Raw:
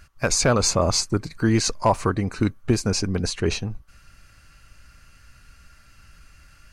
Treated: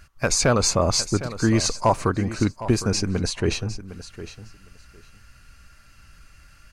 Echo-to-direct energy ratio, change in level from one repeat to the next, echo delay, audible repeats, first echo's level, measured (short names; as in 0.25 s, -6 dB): -14.0 dB, -16.0 dB, 0.758 s, 2, -14.0 dB